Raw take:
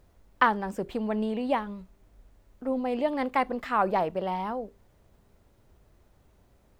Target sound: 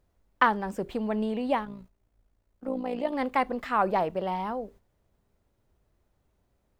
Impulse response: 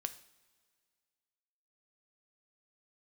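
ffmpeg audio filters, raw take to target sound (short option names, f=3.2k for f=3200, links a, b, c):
-filter_complex "[0:a]asettb=1/sr,asplit=3[a][b][c];[a]atrim=end=1.654[d];[b]atrim=start=1.65:end=3.13,asetpts=PTS-STARTPTS,afade=t=in:d=0.004:c=qsin,afade=t=out:st=1.476:d=0.004:c=qsin,tremolo=f=57:d=0.667[e];[c]atrim=start=3.126[f];[d][e]acrossfade=d=0.004:c1=hsin:c2=qsin[g];[g][f]acrossfade=d=0.004:c1=qsin:c2=hsin,agate=range=-10dB:threshold=-50dB:ratio=16:detection=peak"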